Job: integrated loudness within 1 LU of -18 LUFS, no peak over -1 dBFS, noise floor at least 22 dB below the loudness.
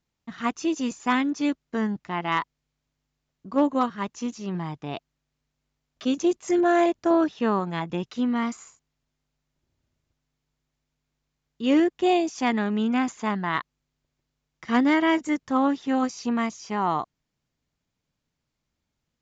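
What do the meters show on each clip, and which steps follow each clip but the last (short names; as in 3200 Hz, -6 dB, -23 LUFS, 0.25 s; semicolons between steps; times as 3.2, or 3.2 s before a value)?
loudness -25.0 LUFS; peak -12.0 dBFS; loudness target -18.0 LUFS
-> gain +7 dB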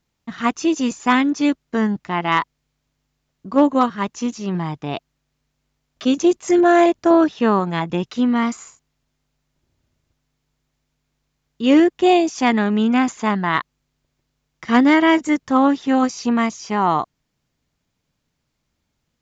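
loudness -18.0 LUFS; peak -5.0 dBFS; noise floor -75 dBFS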